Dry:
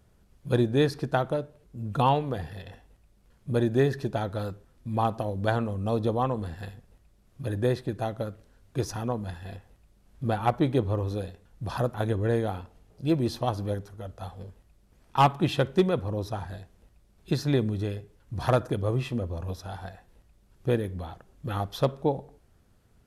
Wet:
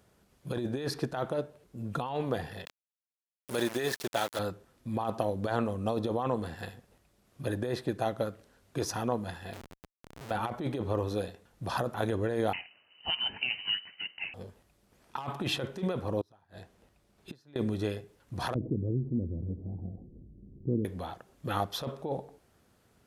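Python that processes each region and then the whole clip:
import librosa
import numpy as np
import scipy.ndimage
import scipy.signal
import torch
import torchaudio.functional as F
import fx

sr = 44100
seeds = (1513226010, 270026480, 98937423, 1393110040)

y = fx.chain(x, sr, fx.tilt_eq(slope=3.0),
    fx.sample_gate(floor_db=-36.0), at=(2.65, 4.39))
y = fx.chain(y, sr, fx.over_compress(threshold_db=-33.0, ratio=-0.5),
    fx.schmitt(flips_db=-46.5), at=(9.53, 10.31))
y = fx.chain(y, sr, fx.steep_highpass(hz=370.0, slope=72),
    fx.high_shelf(hz=2100.0, db=9.5),
    fx.freq_invert(carrier_hz=3400), at=(12.53, 14.34))
y = fx.chain(y, sr, fx.high_shelf(hz=5800.0, db=-4.5),
    fx.gate_flip(shuts_db=-29.0, range_db=-30), at=(16.21, 17.56))
y = fx.chain(y, sr, fx.cheby2_lowpass(hz=1900.0, order=4, stop_db=80),
    fx.env_flatten(amount_pct=50), at=(18.54, 20.85))
y = fx.highpass(y, sr, hz=250.0, slope=6)
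y = fx.over_compress(y, sr, threshold_db=-30.0, ratio=-1.0)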